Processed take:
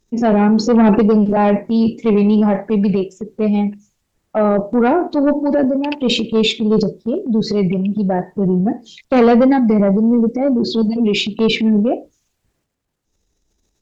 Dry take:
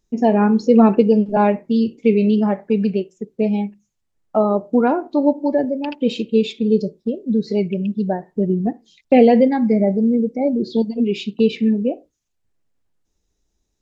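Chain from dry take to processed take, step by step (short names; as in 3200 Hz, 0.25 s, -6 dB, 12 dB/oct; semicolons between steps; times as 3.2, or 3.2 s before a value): added harmonics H 5 -16 dB, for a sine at -1 dBFS; transient shaper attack -3 dB, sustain +9 dB; gain -1 dB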